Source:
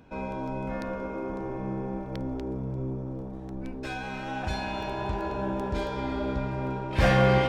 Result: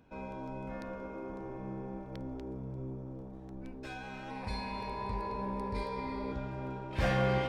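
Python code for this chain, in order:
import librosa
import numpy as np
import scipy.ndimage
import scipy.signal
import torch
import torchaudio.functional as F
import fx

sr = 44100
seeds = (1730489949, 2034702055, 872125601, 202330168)

y = fx.ripple_eq(x, sr, per_octave=0.92, db=14, at=(4.3, 6.32))
y = y * 10.0 ** (-8.5 / 20.0)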